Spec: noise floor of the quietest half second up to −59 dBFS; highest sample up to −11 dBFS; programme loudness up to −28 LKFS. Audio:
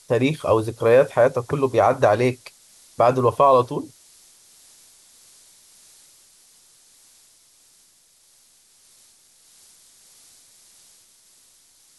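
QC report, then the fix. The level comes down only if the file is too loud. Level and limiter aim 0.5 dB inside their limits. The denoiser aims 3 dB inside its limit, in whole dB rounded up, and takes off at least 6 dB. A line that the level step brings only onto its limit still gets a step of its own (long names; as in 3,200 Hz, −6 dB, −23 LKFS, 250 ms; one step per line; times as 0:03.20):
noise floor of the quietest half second −57 dBFS: out of spec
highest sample −6.0 dBFS: out of spec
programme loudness −19.0 LKFS: out of spec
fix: level −9.5 dB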